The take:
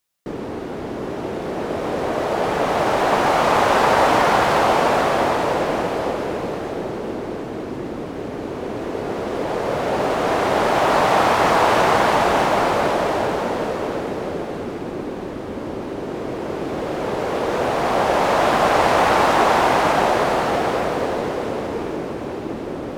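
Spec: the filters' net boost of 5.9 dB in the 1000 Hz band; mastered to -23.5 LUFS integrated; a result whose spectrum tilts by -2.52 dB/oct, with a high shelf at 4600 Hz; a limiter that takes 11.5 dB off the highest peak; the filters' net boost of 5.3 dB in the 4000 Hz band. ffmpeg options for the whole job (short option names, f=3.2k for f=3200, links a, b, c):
-af "equalizer=f=1k:t=o:g=7,equalizer=f=4k:t=o:g=3,highshelf=f=4.6k:g=7,volume=-4dB,alimiter=limit=-13dB:level=0:latency=1"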